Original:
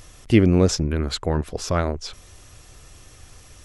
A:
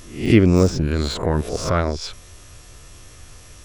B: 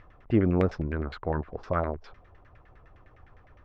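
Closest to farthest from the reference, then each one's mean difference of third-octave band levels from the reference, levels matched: A, B; 3.5 dB, 5.5 dB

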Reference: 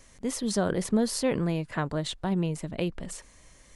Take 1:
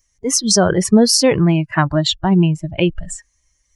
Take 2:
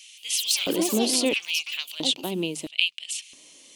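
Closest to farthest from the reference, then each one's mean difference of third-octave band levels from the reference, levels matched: 1, 2; 8.5 dB, 13.5 dB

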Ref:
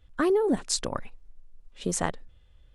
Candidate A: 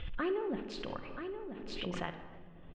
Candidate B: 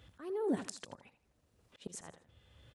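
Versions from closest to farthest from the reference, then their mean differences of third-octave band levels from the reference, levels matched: B, A; 6.0 dB, 9.5 dB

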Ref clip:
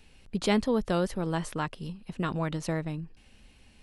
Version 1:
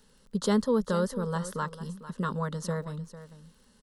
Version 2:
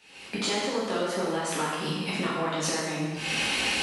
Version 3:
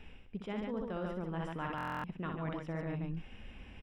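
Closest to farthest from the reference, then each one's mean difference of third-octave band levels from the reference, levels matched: 1, 3, 2; 4.5 dB, 9.0 dB, 14.0 dB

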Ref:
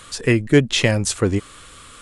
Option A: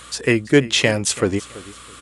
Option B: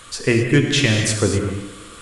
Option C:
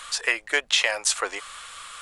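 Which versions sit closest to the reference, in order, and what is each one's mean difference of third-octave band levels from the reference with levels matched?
A, B, C; 3.5 dB, 6.5 dB, 10.5 dB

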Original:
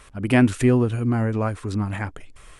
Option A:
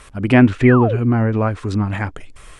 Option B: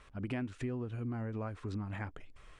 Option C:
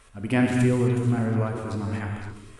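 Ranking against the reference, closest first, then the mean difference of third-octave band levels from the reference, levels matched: A, B, C; 1.5 dB, 4.0 dB, 5.0 dB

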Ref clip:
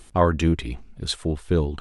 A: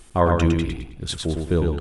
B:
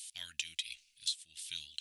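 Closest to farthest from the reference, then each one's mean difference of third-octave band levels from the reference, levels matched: A, B; 5.5 dB, 19.5 dB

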